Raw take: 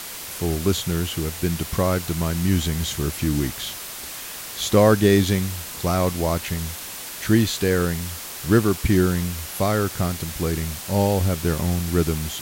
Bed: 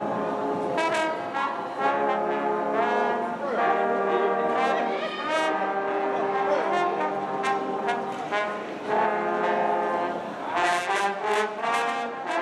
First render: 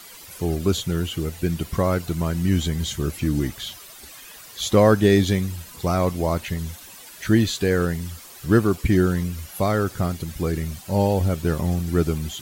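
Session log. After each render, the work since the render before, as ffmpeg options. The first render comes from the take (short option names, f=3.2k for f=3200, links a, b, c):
-af "afftdn=nr=12:nf=-35"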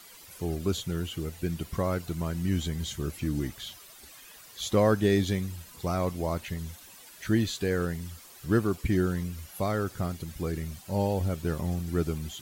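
-af "volume=-7.5dB"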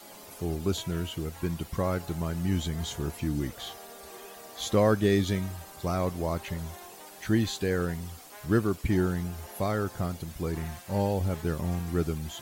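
-filter_complex "[1:a]volume=-24dB[a];[0:a][a]amix=inputs=2:normalize=0"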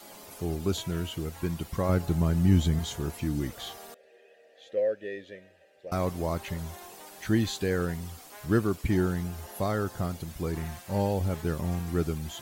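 -filter_complex "[0:a]asettb=1/sr,asplit=3[a][b][c];[a]atrim=end=1.894[d];[b]atrim=start=1.89:end=2.79,asetpts=PTS-STARTPTS,afade=t=in:d=0.004:c=qsin,afade=t=out:st=0.896:d=0.004:c=qsin,lowshelf=f=370:g=8[e];[c]atrim=start=2.786[f];[d][e]acrossfade=d=0.004:c1=hsin:c2=qsin[g];[g][f]acrossfade=d=0.004:c1=qsin:c2=hsin,asettb=1/sr,asplit=3[h][i][j];[h]atrim=end=3.944[k];[i]atrim=start=3.94:end=5.92,asetpts=PTS-STARTPTS,afade=t=in:d=0.004:c=qsin,afade=t=out:st=1.976:d=0.004:c=qsin,asplit=3[l][m][n];[l]bandpass=f=530:t=q:w=8,volume=0dB[o];[m]bandpass=f=1.84k:t=q:w=8,volume=-6dB[p];[n]bandpass=f=2.48k:t=q:w=8,volume=-9dB[q];[o][p][q]amix=inputs=3:normalize=0[r];[j]atrim=start=5.916[s];[k][r]acrossfade=d=0.004:c1=hsin:c2=qsin[t];[t][s]acrossfade=d=0.004:c1=qsin:c2=hsin,asettb=1/sr,asplit=3[u][v][w];[u]atrim=end=9.414[x];[v]atrim=start=9.41:end=10.05,asetpts=PTS-STARTPTS,afade=t=in:d=0.004:c=qsin,afade=t=out:st=0.636:d=0.004:c=qsin,bandreject=f=2.3k:w=12[y];[w]atrim=start=10.046[z];[x][y]acrossfade=d=0.004:c1=hsin:c2=qsin[aa];[aa][z]acrossfade=d=0.004:c1=qsin:c2=hsin"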